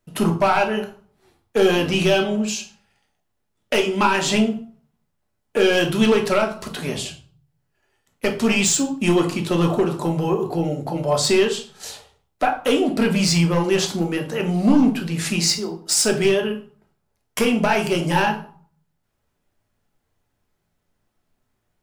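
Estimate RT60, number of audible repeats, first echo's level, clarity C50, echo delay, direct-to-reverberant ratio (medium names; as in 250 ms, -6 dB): 0.45 s, no echo, no echo, 10.5 dB, no echo, 2.0 dB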